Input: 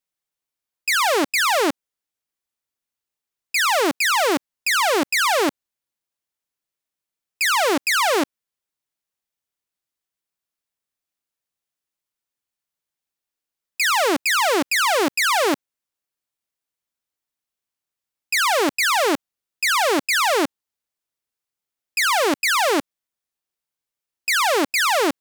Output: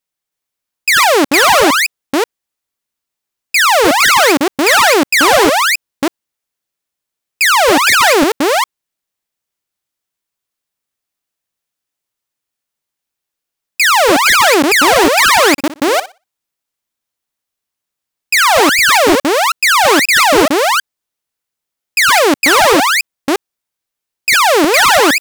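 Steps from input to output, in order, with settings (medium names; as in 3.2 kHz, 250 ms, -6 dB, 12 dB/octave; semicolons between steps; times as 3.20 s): chunks repeated in reverse 320 ms, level -3 dB; waveshaping leveller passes 1; 15.52–18.61 s: flutter echo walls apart 10.3 m, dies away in 0.25 s; trim +6.5 dB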